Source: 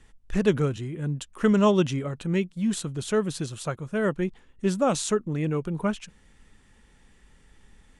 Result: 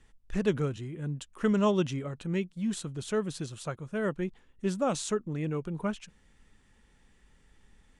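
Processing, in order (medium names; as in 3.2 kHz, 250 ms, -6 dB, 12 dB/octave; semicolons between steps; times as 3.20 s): low-pass 11 kHz; trim -5.5 dB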